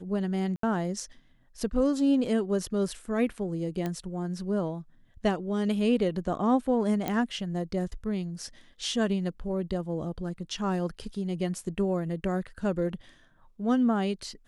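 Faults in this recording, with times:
0.56–0.63 s: dropout 73 ms
3.86 s: pop -19 dBFS
7.08 s: pop -15 dBFS

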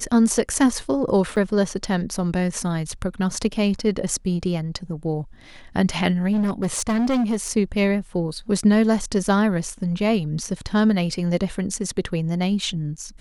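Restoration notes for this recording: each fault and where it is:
1.36–1.37 s: dropout 7 ms
6.32–7.50 s: clipped -17.5 dBFS

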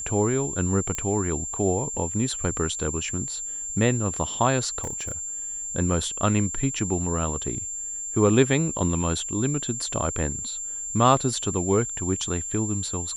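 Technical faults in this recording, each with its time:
whine 7.3 kHz -30 dBFS
0.95 s: pop -15 dBFS
4.83–5.12 s: clipped -26 dBFS

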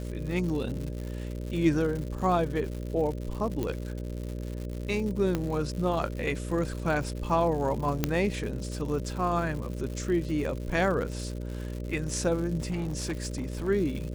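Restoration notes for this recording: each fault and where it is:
buzz 60 Hz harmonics 10 -35 dBFS
crackle 170 per s -35 dBFS
3.63 s: pop -18 dBFS
5.35 s: pop -15 dBFS
8.04 s: pop -10 dBFS
12.70–13.69 s: clipped -27 dBFS

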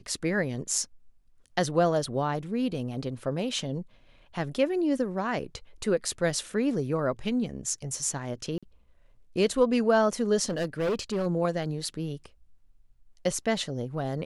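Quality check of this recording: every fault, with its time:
8.58–8.63 s: dropout 46 ms
10.49–11.27 s: clipped -24 dBFS

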